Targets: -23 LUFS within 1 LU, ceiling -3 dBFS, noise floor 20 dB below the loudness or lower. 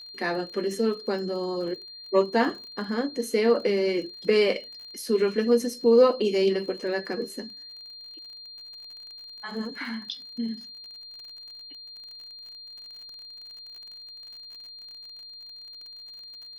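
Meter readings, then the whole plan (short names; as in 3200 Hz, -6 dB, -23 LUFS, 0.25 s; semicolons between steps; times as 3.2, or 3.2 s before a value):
ticks 40/s; steady tone 4200 Hz; tone level -41 dBFS; loudness -26.0 LUFS; peak -8.0 dBFS; loudness target -23.0 LUFS
-> de-click; notch 4200 Hz, Q 30; gain +3 dB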